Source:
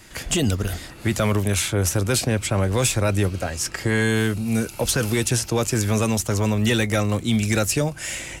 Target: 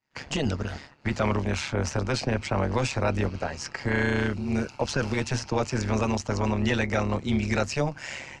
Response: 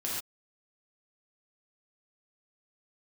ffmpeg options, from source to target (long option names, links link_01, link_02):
-af "highpass=100,equalizer=frequency=330:width_type=q:width=4:gain=-7,equalizer=frequency=900:width_type=q:width=4:gain=6,equalizer=frequency=3500:width_type=q:width=4:gain=-8,lowpass=frequency=5400:width=0.5412,lowpass=frequency=5400:width=1.3066,agate=range=-33dB:threshold=-33dB:ratio=3:detection=peak,tremolo=f=140:d=0.75"